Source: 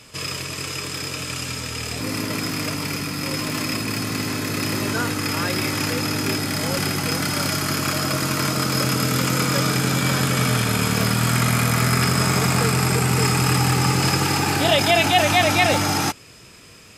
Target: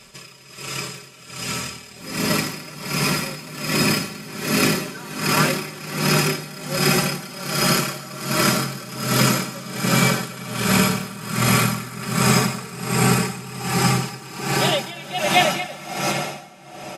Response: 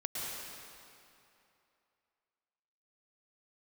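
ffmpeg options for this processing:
-filter_complex "[0:a]aecho=1:1:5.2:0.94,dynaudnorm=framelen=220:gausssize=17:maxgain=11.5dB,asplit=2[link_01][link_02];[1:a]atrim=start_sample=2205,asetrate=26460,aresample=44100[link_03];[link_02][link_03]afir=irnorm=-1:irlink=0,volume=-8dB[link_04];[link_01][link_04]amix=inputs=2:normalize=0,aeval=exprs='val(0)*pow(10,-19*(0.5-0.5*cos(2*PI*1.3*n/s))/20)':channel_layout=same,volume=-5dB"

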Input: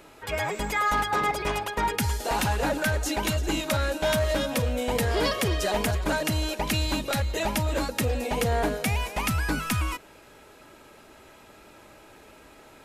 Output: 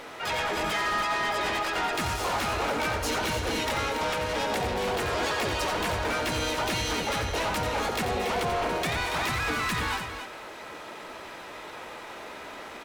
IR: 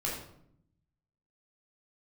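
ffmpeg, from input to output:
-filter_complex "[0:a]bandreject=frequency=262.8:width_type=h:width=4,bandreject=frequency=525.6:width_type=h:width=4,bandreject=frequency=788.4:width_type=h:width=4,bandreject=frequency=1051.2:width_type=h:width=4,bandreject=frequency=1314:width_type=h:width=4,bandreject=frequency=1576.8:width_type=h:width=4,bandreject=frequency=1839.6:width_type=h:width=4,bandreject=frequency=2102.4:width_type=h:width=4,bandreject=frequency=2365.2:width_type=h:width=4,bandreject=frequency=2628:width_type=h:width=4,bandreject=frequency=2890.8:width_type=h:width=4,bandreject=frequency=3153.6:width_type=h:width=4,bandreject=frequency=3416.4:width_type=h:width=4,bandreject=frequency=3679.2:width_type=h:width=4,bandreject=frequency=3942:width_type=h:width=4,bandreject=frequency=4204.8:width_type=h:width=4,bandreject=frequency=4467.6:width_type=h:width=4,bandreject=frequency=4730.4:width_type=h:width=4,bandreject=frequency=4993.2:width_type=h:width=4,bandreject=frequency=5256:width_type=h:width=4,bandreject=frequency=5518.8:width_type=h:width=4,bandreject=frequency=5781.6:width_type=h:width=4,bandreject=frequency=6044.4:width_type=h:width=4,bandreject=frequency=6307.2:width_type=h:width=4,bandreject=frequency=6570:width_type=h:width=4,bandreject=frequency=6832.8:width_type=h:width=4,bandreject=frequency=7095.6:width_type=h:width=4,bandreject=frequency=7358.4:width_type=h:width=4,asplit=3[link_01][link_02][link_03];[link_02]asetrate=35002,aresample=44100,atempo=1.25992,volume=-2dB[link_04];[link_03]asetrate=66075,aresample=44100,atempo=0.66742,volume=-1dB[link_05];[link_01][link_04][link_05]amix=inputs=3:normalize=0,asplit=2[link_06][link_07];[link_07]highpass=frequency=720:poles=1,volume=14dB,asoftclip=type=tanh:threshold=-9dB[link_08];[link_06][link_08]amix=inputs=2:normalize=0,lowpass=frequency=2800:poles=1,volume=-6dB,acompressor=threshold=-22dB:ratio=6,asoftclip=type=tanh:threshold=-25.5dB,aecho=1:1:87.46|282.8:0.398|0.355"

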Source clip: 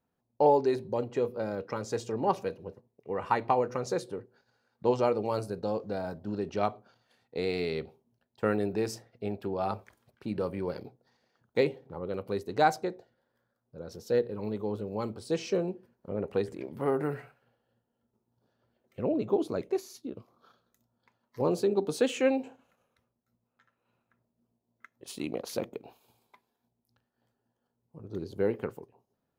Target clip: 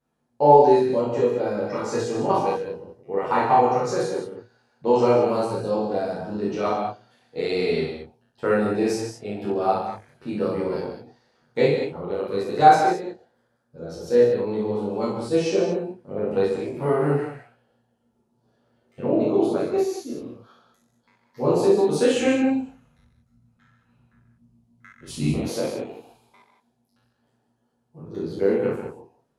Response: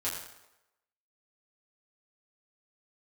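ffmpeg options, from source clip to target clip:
-filter_complex "[1:a]atrim=start_sample=2205,atrim=end_sample=6174,asetrate=23814,aresample=44100[link_01];[0:a][link_01]afir=irnorm=-1:irlink=0,asplit=3[link_02][link_03][link_04];[link_02]afade=type=out:start_time=22.17:duration=0.02[link_05];[link_03]asubboost=boost=8.5:cutoff=150,afade=type=in:start_time=22.17:duration=0.02,afade=type=out:start_time=25.48:duration=0.02[link_06];[link_04]afade=type=in:start_time=25.48:duration=0.02[link_07];[link_05][link_06][link_07]amix=inputs=3:normalize=0,volume=-1dB"

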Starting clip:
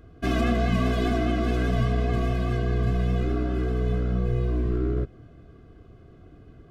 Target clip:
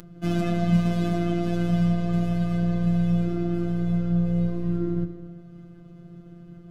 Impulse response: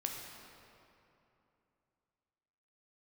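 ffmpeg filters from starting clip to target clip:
-filter_complex "[0:a]bass=frequency=250:gain=14,treble=frequency=4000:gain=5,asplit=2[link_01][link_02];[1:a]atrim=start_sample=2205,afade=type=out:start_time=0.35:duration=0.01,atrim=end_sample=15876,asetrate=31311,aresample=44100[link_03];[link_02][link_03]afir=irnorm=-1:irlink=0,volume=-2dB[link_04];[link_01][link_04]amix=inputs=2:normalize=0,acompressor=mode=upward:threshold=-19dB:ratio=2.5,highpass=93,afftfilt=real='hypot(re,im)*cos(PI*b)':imag='0':win_size=1024:overlap=0.75,volume=-8dB"

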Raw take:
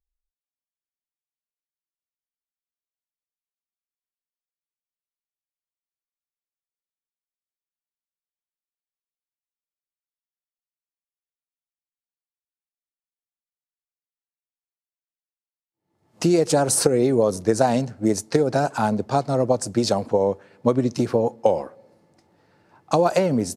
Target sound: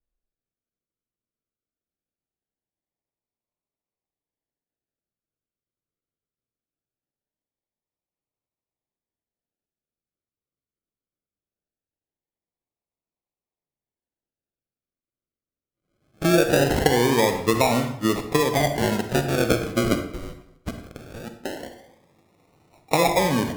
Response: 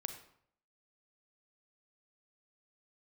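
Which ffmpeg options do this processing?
-filter_complex "[0:a]asettb=1/sr,asplit=3[link_01][link_02][link_03];[link_01]atrim=end=19.954[link_04];[link_02]atrim=start=19.95:end=21.63,asetpts=PTS-STARTPTS,afade=type=in:duration=0.004:curve=qsin,afade=type=out:start_time=1.676:duration=0.004:curve=qsin,highpass=frequency=880:width=0.5412,highpass=frequency=880:width=1.3066[link_05];[link_03]atrim=start=21.626[link_06];[link_04][link_05]acrossfade=duration=0.004:curve1=hsin:curve2=qsin[link_07];[link_07][link_06]acrossfade=duration=0.004:curve1=qsin:curve2=hsin,acrusher=samples=39:mix=1:aa=0.000001:lfo=1:lforange=23.4:lforate=0.21[link_08];[1:a]atrim=start_sample=2205,asetrate=41454,aresample=44100[link_09];[link_08][link_09]afir=irnorm=-1:irlink=0"

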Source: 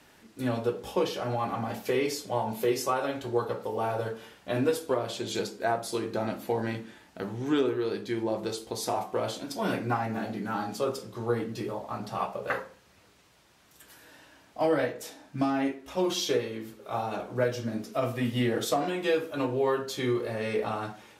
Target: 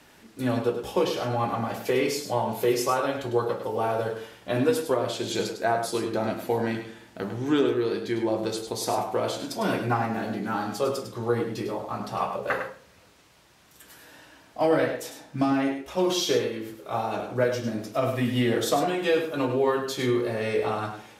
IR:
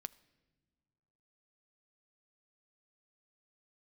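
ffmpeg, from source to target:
-filter_complex "[0:a]asplit=2[link_01][link_02];[1:a]atrim=start_sample=2205,adelay=102[link_03];[link_02][link_03]afir=irnorm=-1:irlink=0,volume=-4dB[link_04];[link_01][link_04]amix=inputs=2:normalize=0,volume=3dB"

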